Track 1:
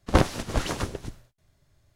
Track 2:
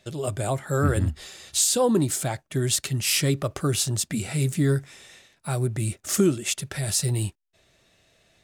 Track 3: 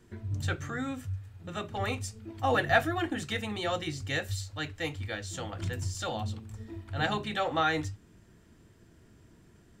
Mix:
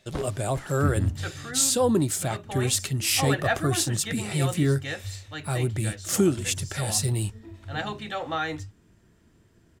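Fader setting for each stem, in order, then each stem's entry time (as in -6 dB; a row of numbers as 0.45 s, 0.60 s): -15.5 dB, -1.0 dB, -1.5 dB; 0.00 s, 0.00 s, 0.75 s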